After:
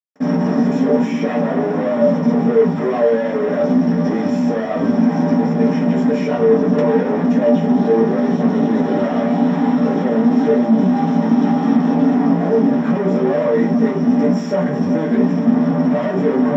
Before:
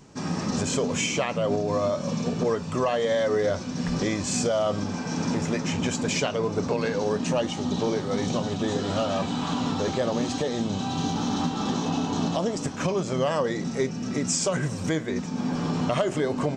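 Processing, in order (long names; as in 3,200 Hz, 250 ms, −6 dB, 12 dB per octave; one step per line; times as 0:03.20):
in parallel at −2.5 dB: brickwall limiter −23.5 dBFS, peak gain reduction 10.5 dB
0:12.09–0:12.85: on the sum: bad sample-rate conversion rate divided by 8×, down filtered, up hold
multi-voice chorus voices 6, 1.2 Hz, delay 15 ms, depth 3 ms
log-companded quantiser 2 bits
convolution reverb RT60 0.45 s, pre-delay 46 ms
level +8 dB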